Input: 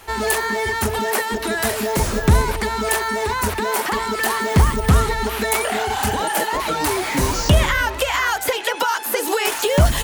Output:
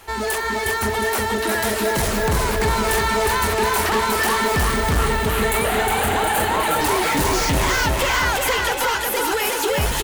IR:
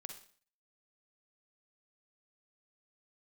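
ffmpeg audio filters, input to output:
-filter_complex "[0:a]dynaudnorm=framelen=310:gausssize=13:maxgain=11.5dB,volume=17dB,asoftclip=hard,volume=-17dB,asettb=1/sr,asplit=3[link_01][link_02][link_03];[link_01]atrim=end=4.954[link_04];[link_02]atrim=start=4.95:end=6.81,asetpts=PTS-STARTPTS,afade=type=in:duration=0.004:curve=qsin,afade=type=out:start_time=1.856:duration=0.004:curve=qsin,equalizer=frequency=5400:width=2.7:gain=-11.5[link_05];[link_03]atrim=start=6.806[link_06];[link_04][link_05]acrossfade=duration=0.004:curve1=hsin:curve2=qsin[link_07];[link_07][link_06]acrossfade=duration=0.004:curve1=qsin:curve2=hsin,aecho=1:1:361|722|1083|1444|1805|2166|2527:0.708|0.354|0.177|0.0885|0.0442|0.0221|0.0111,volume=-1.5dB"

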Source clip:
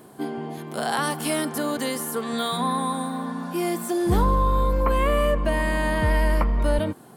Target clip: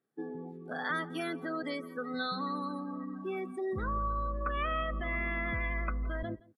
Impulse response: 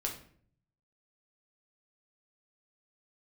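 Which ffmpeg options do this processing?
-filter_complex "[0:a]lowpass=9000,bandreject=frequency=4400:width=23,afftdn=noise_reduction=29:noise_floor=-29,acrossover=split=950[link_01][link_02];[link_01]alimiter=limit=-21dB:level=0:latency=1:release=41[link_03];[link_02]highpass=frequency=1200:width_type=q:width=2.1[link_04];[link_03][link_04]amix=inputs=2:normalize=0,asetrate=48069,aresample=44100,aecho=1:1:170:0.0668,adynamicequalizer=threshold=0.00447:dfrequency=5300:dqfactor=0.7:tfrequency=5300:tqfactor=0.7:attack=5:release=100:ratio=0.375:range=2:mode=cutabove:tftype=highshelf,volume=-8.5dB"

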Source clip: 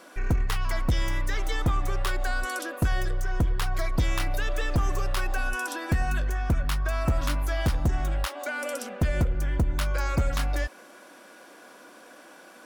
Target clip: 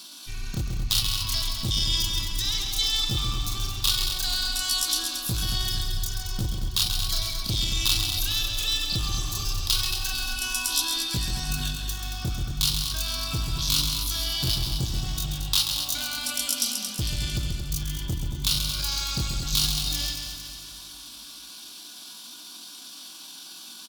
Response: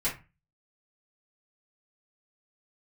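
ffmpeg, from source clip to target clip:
-filter_complex "[0:a]equalizer=frequency=125:width_type=o:width=1:gain=11,equalizer=frequency=250:width_type=o:width=1:gain=4,equalizer=frequency=500:width_type=o:width=1:gain=-12,equalizer=frequency=1000:width_type=o:width=1:gain=4,equalizer=frequency=2000:width_type=o:width=1:gain=-6,equalizer=frequency=4000:width_type=o:width=1:gain=10,equalizer=frequency=8000:width_type=o:width=1:gain=-5,asoftclip=type=tanh:threshold=-18dB,atempo=0.53,equalizer=frequency=540:width=4.5:gain=-5.5,asplit=2[link_01][link_02];[link_02]aecho=0:1:226|452|678|904|1130|1356|1582:0.398|0.219|0.12|0.0662|0.0364|0.02|0.011[link_03];[link_01][link_03]amix=inputs=2:normalize=0,aexciter=amount=6.4:drive=6.2:freq=2700,asplit=2[link_04][link_05];[link_05]aecho=0:1:134:0.473[link_06];[link_04][link_06]amix=inputs=2:normalize=0,volume=-5.5dB"

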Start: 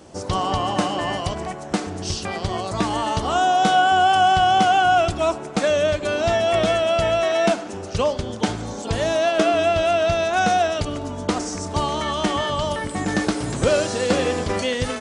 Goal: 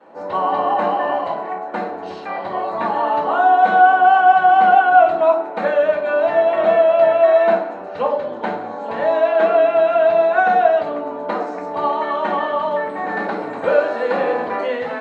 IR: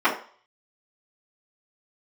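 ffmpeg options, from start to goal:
-filter_complex "[0:a]highpass=72,acrossover=split=320 4800:gain=0.2 1 0.141[link_01][link_02][link_03];[link_01][link_02][link_03]amix=inputs=3:normalize=0[link_04];[1:a]atrim=start_sample=2205,asetrate=33075,aresample=44100[link_05];[link_04][link_05]afir=irnorm=-1:irlink=0,volume=-17.5dB"

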